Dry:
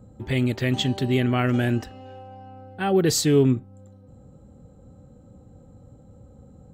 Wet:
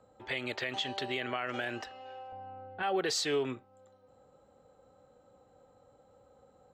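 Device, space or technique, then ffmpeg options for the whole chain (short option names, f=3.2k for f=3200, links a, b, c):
DJ mixer with the lows and highs turned down: -filter_complex "[0:a]acrossover=split=500 6000:gain=0.0631 1 0.141[a][b][c];[a][b][c]amix=inputs=3:normalize=0,alimiter=limit=-22.5dB:level=0:latency=1:release=88,asettb=1/sr,asplit=3[d][e][f];[d]atrim=end=2.324[g];[e]atrim=start=2.32:end=2.83,asetpts=PTS-STARTPTS,afade=t=in:d=0.004:c=qsin,afade=t=out:st=0.506:d=0.004:c=qsin,aemphasis=mode=reproduction:type=riaa[h];[f]atrim=start=2.826[i];[g][h]acrossfade=d=0.004:c1=hsin:c2=qsin[j];[j][i]acrossfade=d=0.004:c1=qsin:c2=hsin"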